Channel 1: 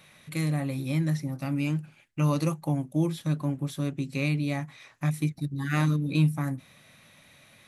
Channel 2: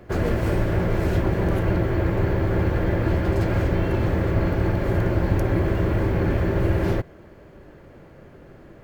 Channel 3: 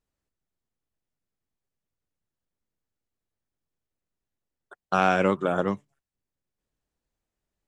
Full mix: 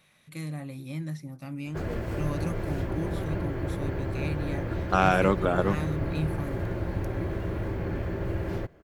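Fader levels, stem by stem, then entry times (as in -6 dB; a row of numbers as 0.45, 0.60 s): -8.0, -9.5, -0.5 dB; 0.00, 1.65, 0.00 s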